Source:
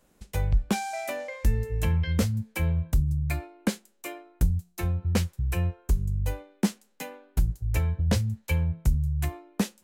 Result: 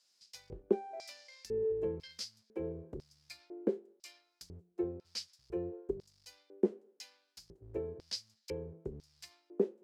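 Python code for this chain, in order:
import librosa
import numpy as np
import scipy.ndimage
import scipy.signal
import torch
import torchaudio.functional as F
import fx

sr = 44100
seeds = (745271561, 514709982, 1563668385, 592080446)

y = fx.law_mismatch(x, sr, coded='mu')
y = fx.filter_lfo_bandpass(y, sr, shape='square', hz=1.0, low_hz=390.0, high_hz=4900.0, q=6.1)
y = fx.dynamic_eq(y, sr, hz=430.0, q=1.1, threshold_db=-59.0, ratio=4.0, max_db=7)
y = y * 10.0 ** (2.5 / 20.0)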